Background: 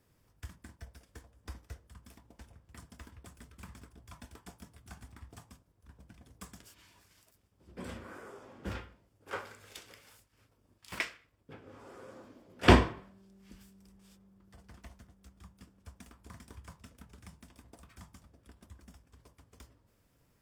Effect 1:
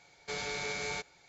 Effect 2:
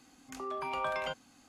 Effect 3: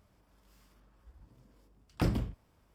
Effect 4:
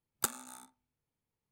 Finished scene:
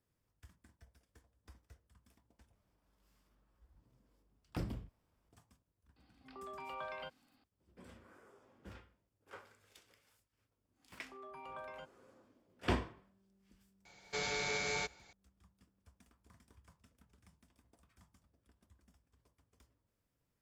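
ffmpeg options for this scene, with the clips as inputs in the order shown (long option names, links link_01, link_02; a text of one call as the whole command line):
ffmpeg -i bed.wav -i cue0.wav -i cue1.wav -i cue2.wav -filter_complex "[2:a]asplit=2[link_01][link_02];[0:a]volume=-14dB[link_03];[link_01]aresample=11025,aresample=44100[link_04];[link_02]equalizer=frequency=5300:width_type=o:width=2.4:gain=-7.5[link_05];[link_03]asplit=2[link_06][link_07];[link_06]atrim=end=2.554[link_08];[3:a]atrim=end=2.74,asetpts=PTS-STARTPTS,volume=-10.5dB[link_09];[link_07]atrim=start=5.286[link_10];[link_04]atrim=end=1.48,asetpts=PTS-STARTPTS,volume=-10.5dB,afade=type=in:duration=0.004:curve=hsin,afade=type=out:start_time=1.476:duration=0.004:curve=hsin,adelay=5960[link_11];[link_05]atrim=end=1.48,asetpts=PTS-STARTPTS,volume=-13dB,afade=type=in:duration=0.1,afade=type=out:start_time=1.38:duration=0.1,adelay=10720[link_12];[1:a]atrim=end=1.28,asetpts=PTS-STARTPTS,volume=-0.5dB,afade=type=in:duration=0.004:curve=hsin,afade=type=out:start_time=1.276:duration=0.004:curve=hsin,adelay=13850[link_13];[link_08][link_09]acrossfade=duration=0.004:curve1=hsin:curve2=hsin[link_14];[link_14][link_10]acrossfade=duration=0.004:curve1=hsin:curve2=hsin[link_15];[link_15][link_11][link_12][link_13]amix=inputs=4:normalize=0" out.wav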